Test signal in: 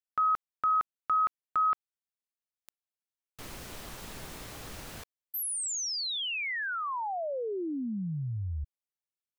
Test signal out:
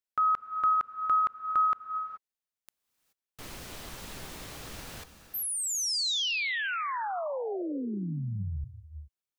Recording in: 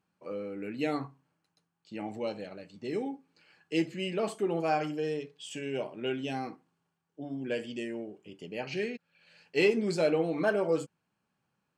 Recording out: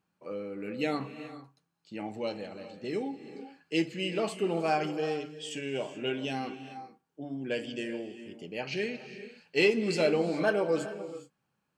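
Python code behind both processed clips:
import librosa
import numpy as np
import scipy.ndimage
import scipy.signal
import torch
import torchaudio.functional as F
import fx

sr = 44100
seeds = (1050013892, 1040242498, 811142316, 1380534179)

y = fx.dynamic_eq(x, sr, hz=3900.0, q=0.7, threshold_db=-49.0, ratio=4.0, max_db=4)
y = fx.rev_gated(y, sr, seeds[0], gate_ms=450, shape='rising', drr_db=11.0)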